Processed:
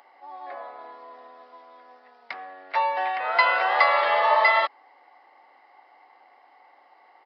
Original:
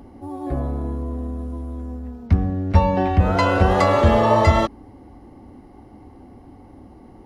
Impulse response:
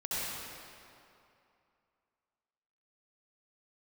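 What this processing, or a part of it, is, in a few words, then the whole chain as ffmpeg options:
musical greeting card: -filter_complex "[0:a]aresample=11025,aresample=44100,highpass=f=720:w=0.5412,highpass=f=720:w=1.3066,equalizer=f=2000:t=o:w=0.35:g=8,asettb=1/sr,asplit=3[s0][s1][s2];[s0]atrim=end=0.794[s3];[s1]atrim=start=0.79:end=2.34,asetpts=PTS-STARTPTS,afade=t=in:d=0.004:c=qsin,afade=t=out:st=1.546:d=0.004:c=qsin,bass=f=250:g=5,treble=f=4000:g=7[s4];[s2]atrim=start=2.336[s5];[s3][s4]acrossfade=d=0.004:c1=hsin:c2=qsin[s6];[s6][s5]acrossfade=d=0.004:c1=qsin:c2=hsin"

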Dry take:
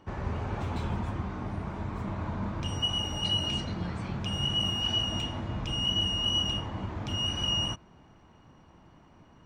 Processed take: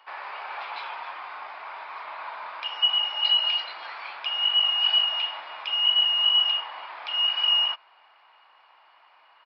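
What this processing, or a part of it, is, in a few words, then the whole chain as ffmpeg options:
musical greeting card: -af "aresample=11025,aresample=44100,highpass=f=800:w=0.5412,highpass=f=800:w=1.3066,equalizer=f=2400:t=o:w=0.37:g=5,volume=2.11"

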